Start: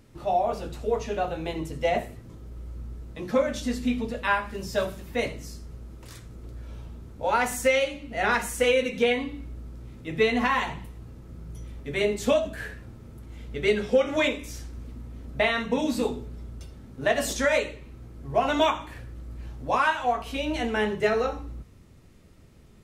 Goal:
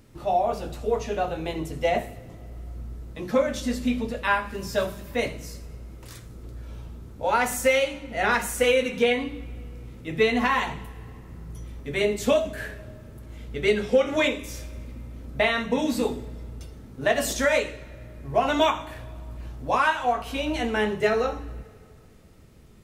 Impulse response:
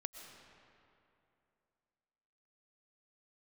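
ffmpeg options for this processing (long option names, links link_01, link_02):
-filter_complex "[0:a]asplit=2[link_01][link_02];[link_02]aemphasis=mode=production:type=50fm[link_03];[1:a]atrim=start_sample=2205[link_04];[link_03][link_04]afir=irnorm=-1:irlink=0,volume=-12.5dB[link_05];[link_01][link_05]amix=inputs=2:normalize=0"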